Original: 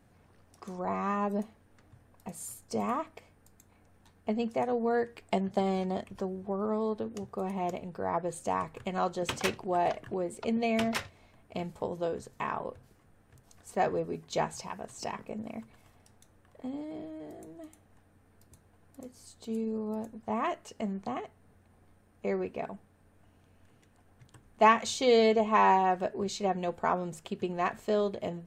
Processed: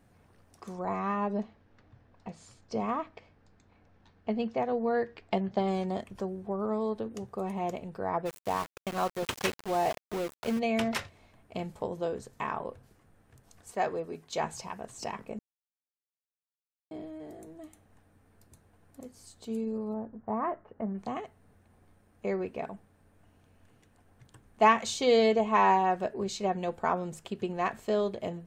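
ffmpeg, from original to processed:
-filter_complex "[0:a]asettb=1/sr,asplit=3[a][b][c];[a]atrim=end=0.994[d];[b]atrim=start=0.99:end=5.68,asetpts=PTS-STARTPTS,afade=t=in:d=0.004:c=qsin,afade=t=out:st=4.686:d=0.004:c=qsin,lowpass=f=5.3k:w=0.5412,lowpass=f=5.3k:w=1.3066[e];[c]atrim=start=5.676[f];[d][e]acrossfade=d=0.004:c1=hsin:c2=qsin[g];[g][f]acrossfade=d=0.004:c1=qsin:c2=hsin,asplit=3[h][i][j];[h]afade=t=out:st=8.25:d=0.02[k];[i]aeval=exprs='val(0)*gte(abs(val(0)),0.0178)':c=same,afade=t=in:st=8.25:d=0.02,afade=t=out:st=10.58:d=0.02[l];[j]afade=t=in:st=10.58:d=0.02[m];[k][l][m]amix=inputs=3:normalize=0,asettb=1/sr,asplit=3[n][o][p];[n]atrim=end=13.714[q];[o]atrim=start=13.71:end=14.44,asetpts=PTS-STARTPTS,afade=t=in:d=0.004:c=qsin,afade=t=out:st=0.726:d=0.004:c=qsin,lowshelf=f=320:g=-8[r];[p]atrim=start=14.436[s];[q][r]acrossfade=d=0.004:c1=hsin:c2=qsin[t];[t][s]acrossfade=d=0.004:c1=qsin:c2=hsin,asplit=3[u][v][w];[u]afade=t=out:st=19.92:d=0.02[x];[v]lowpass=f=1.6k:w=0.5412,lowpass=f=1.6k:w=1.3066,afade=t=in:st=19.92:d=0.02,afade=t=out:st=20.93:d=0.02[y];[w]afade=t=in:st=20.93:d=0.02[z];[x][y][z]amix=inputs=3:normalize=0,asplit=3[aa][ab][ac];[aa]atrim=end=15.39,asetpts=PTS-STARTPTS,afade=t=out:st=15.386:d=0.004:c=hsin[ad];[ab]atrim=start=15.39:end=16.91,asetpts=PTS-STARTPTS,volume=0[ae];[ac]atrim=start=16.91,asetpts=PTS-STARTPTS,afade=t=in:d=0.004:c=hsin[af];[ad][ae][af]concat=n=3:v=0:a=1"

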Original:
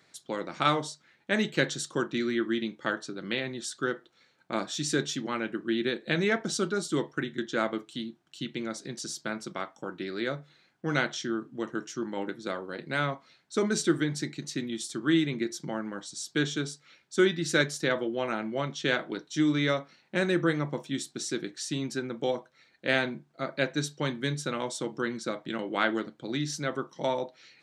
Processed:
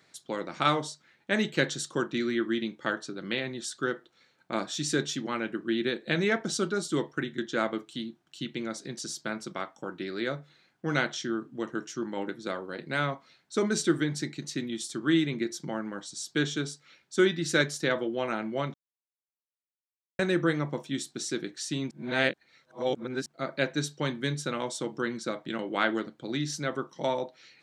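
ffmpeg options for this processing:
-filter_complex "[0:a]asplit=5[a][b][c][d][e];[a]atrim=end=18.74,asetpts=PTS-STARTPTS,afade=t=out:st=18.736:d=0.004:c=hsin[f];[b]atrim=start=18.74:end=20.19,asetpts=PTS-STARTPTS,volume=0[g];[c]atrim=start=20.19:end=21.912,asetpts=PTS-STARTPTS,afade=t=in:d=0.004:c=hsin[h];[d]atrim=start=21.908:end=23.262,asetpts=PTS-STARTPTS,areverse[i];[e]atrim=start=23.258[j];[f][g][h]concat=n=3:v=0:a=1[k];[k][i]acrossfade=d=0.004:c1=hsin:c2=hsin[l];[l][j]acrossfade=d=0.004:c1=hsin:c2=hsin"

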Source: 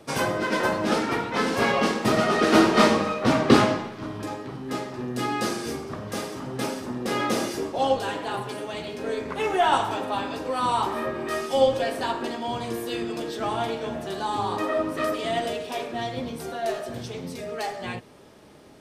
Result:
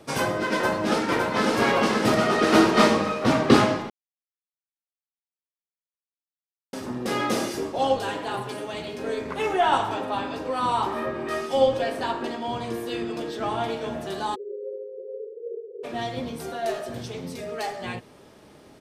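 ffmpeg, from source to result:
-filter_complex "[0:a]asplit=2[a][b];[b]afade=t=in:st=0.52:d=0.01,afade=t=out:st=1.58:d=0.01,aecho=0:1:560|1120|1680|2240|2800|3360|3920:0.668344|0.334172|0.167086|0.083543|0.0417715|0.0208857|0.0104429[c];[a][c]amix=inputs=2:normalize=0,asettb=1/sr,asplit=3[d][e][f];[d]atrim=end=9.534[g];[e]atrim=start=9.53:end=13.7,asetpts=PTS-STARTPTS,afade=t=in:d=0.004:c=qsin,afade=t=out:st=4.166:d=0.004:c=qsin,highshelf=f=5.9k:g=-6.5[h];[f]atrim=start=13.696[i];[g][h]acrossfade=d=0.004:c1=hsin:c2=qsin[j];[j][i]acrossfade=d=0.004:c1=qsin:c2=hsin,asplit=3[k][l][m];[k]afade=t=out:st=14.34:d=0.02[n];[l]asuperpass=centerf=450:order=20:qfactor=2.5,afade=t=in:st=14.34:d=0.02,afade=t=out:st=15.83:d=0.02[o];[m]afade=t=in:st=15.83:d=0.02[p];[n][o][p]amix=inputs=3:normalize=0,asplit=3[q][r][s];[q]atrim=end=3.9,asetpts=PTS-STARTPTS,afade=t=out:st=3.896:d=0.004:c=hsin[t];[r]atrim=start=3.9:end=6.73,asetpts=PTS-STARTPTS,volume=0[u];[s]atrim=start=6.73,asetpts=PTS-STARTPTS,afade=t=in:d=0.004:c=hsin[v];[t][u][v]concat=n=3:v=0:a=1"

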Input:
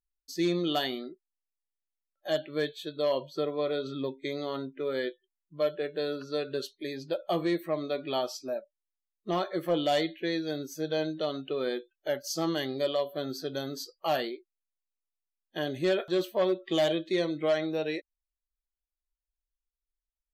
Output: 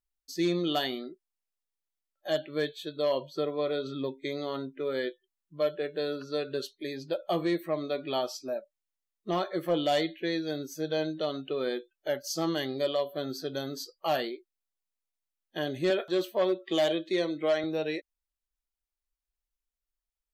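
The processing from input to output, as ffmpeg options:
-filter_complex "[0:a]asettb=1/sr,asplit=3[a][b][c];[a]atrim=end=15.904[d];[b]atrim=start=15.9:end=17.64,asetpts=PTS-STARTPTS,afade=t=in:d=0.004:c=qsin,afade=t=out:st=1.736:d=0.004:c=qsin,highpass=190[e];[c]atrim=start=17.636[f];[d][e]acrossfade=d=0.004:c1=hsin:c2=qsin[g];[g][f]acrossfade=d=0.004:c1=qsin:c2=hsin"

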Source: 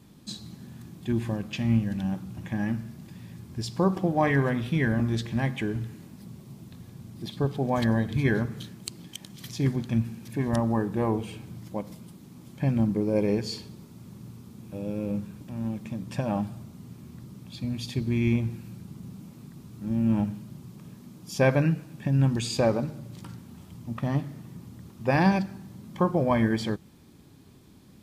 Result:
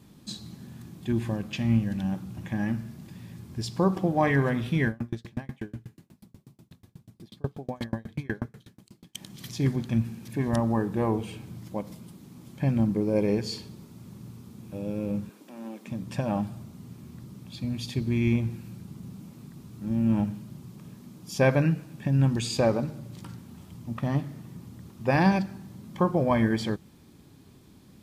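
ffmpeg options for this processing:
-filter_complex "[0:a]asettb=1/sr,asplit=3[a][b][c];[a]atrim=end=4.884[d];[b]atrim=start=4.88:end=9.15,asetpts=PTS-STARTPTS,afade=t=in:d=0.004:c=qsin,afade=t=out:st=4.266:d=0.004:c=qsin,aeval=exprs='val(0)*pow(10,-35*if(lt(mod(8.2*n/s,1),2*abs(8.2)/1000),1-mod(8.2*n/s,1)/(2*abs(8.2)/1000),(mod(8.2*n/s,1)-2*abs(8.2)/1000)/(1-2*abs(8.2)/1000))/20)':c=same[e];[c]atrim=start=9.146[f];[d][e]acrossfade=d=0.004:c1=hsin:c2=qsin[g];[g][f]acrossfade=d=0.004:c1=qsin:c2=hsin,asettb=1/sr,asplit=3[h][i][j];[h]atrim=end=15.294[k];[i]atrim=start=15.29:end=15.88,asetpts=PTS-STARTPTS,afade=t=in:d=0.004:c=qsin,afade=t=out:st=0.586:d=0.004:c=qsin,highpass=f=280:w=0.5412,highpass=f=280:w=1.3066[l];[j]atrim=start=15.876[m];[k][l]acrossfade=d=0.004:c1=hsin:c2=qsin[n];[n][m]acrossfade=d=0.004:c1=qsin:c2=hsin"

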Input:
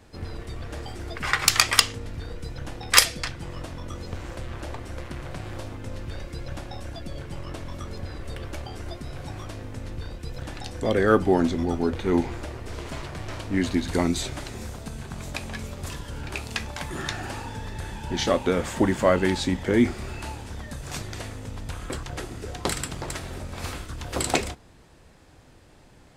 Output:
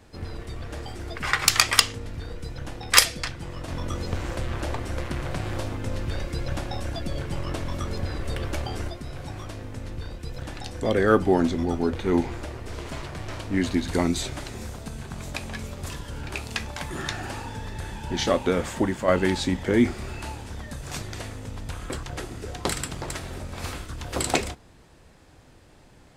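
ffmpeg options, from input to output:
-filter_complex "[0:a]asettb=1/sr,asplit=3[a][b][c];[a]atrim=end=3.684[d];[b]atrim=start=3.68:end=8.88,asetpts=PTS-STARTPTS,afade=t=in:d=0.004:c=qsin,afade=t=out:st=5.196:d=0.004:c=qsin,acontrast=37[e];[c]atrim=start=8.876[f];[d][e]acrossfade=d=0.004:c1=hsin:c2=qsin[g];[g][f]acrossfade=d=0.004:c1=qsin:c2=hsin,asplit=2[h][i];[h]atrim=end=19.08,asetpts=PTS-STARTPTS,afade=t=out:st=18.6:d=0.48:silence=0.473151[j];[i]atrim=start=19.08,asetpts=PTS-STARTPTS,afade=t=in:d=0.004:c=hsin:silence=0.473151[k];[j][k]concat=n=2:v=0:a=1"

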